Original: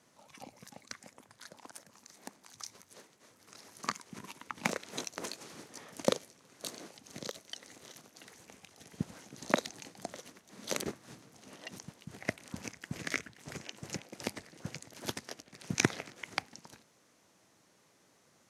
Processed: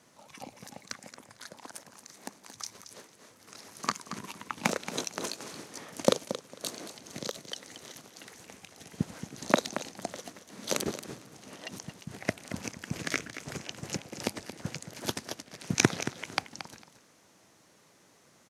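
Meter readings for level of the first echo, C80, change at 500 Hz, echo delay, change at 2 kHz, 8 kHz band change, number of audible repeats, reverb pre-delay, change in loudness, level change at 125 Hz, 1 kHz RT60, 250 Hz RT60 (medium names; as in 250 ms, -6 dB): -11.5 dB, no reverb, +5.5 dB, 226 ms, +3.0 dB, +5.5 dB, 2, no reverb, +4.5 dB, +5.5 dB, no reverb, no reverb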